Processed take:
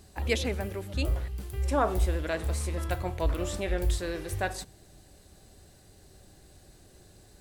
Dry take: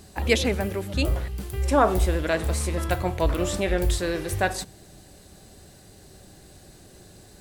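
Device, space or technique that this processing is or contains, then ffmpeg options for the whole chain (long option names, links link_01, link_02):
low shelf boost with a cut just above: -af "lowshelf=frequency=79:gain=6,equalizer=frequency=180:width_type=o:width=0.77:gain=-3,volume=-7dB"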